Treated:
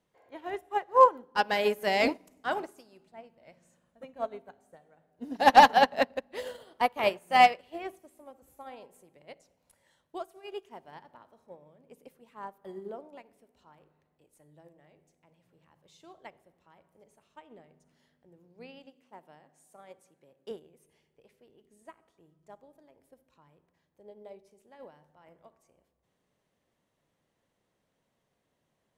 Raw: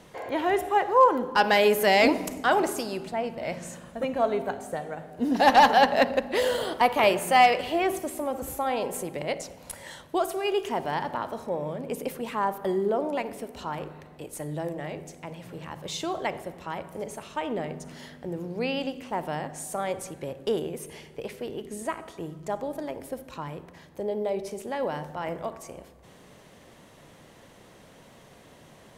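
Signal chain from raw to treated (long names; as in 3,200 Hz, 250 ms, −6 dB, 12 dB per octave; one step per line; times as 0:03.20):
0:18.86–0:20.51: high-pass filter 150 Hz 12 dB per octave
expander for the loud parts 2.5 to 1, over −32 dBFS
level +2.5 dB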